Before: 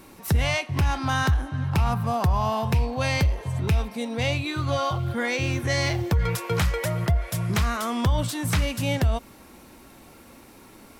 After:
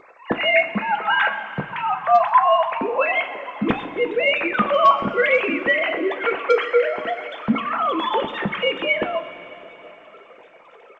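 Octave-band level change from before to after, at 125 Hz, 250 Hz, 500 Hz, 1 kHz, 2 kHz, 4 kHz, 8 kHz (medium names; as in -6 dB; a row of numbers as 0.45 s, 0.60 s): -15.5 dB, +2.0 dB, +9.5 dB, +10.0 dB, +9.0 dB, +3.5 dB, under -20 dB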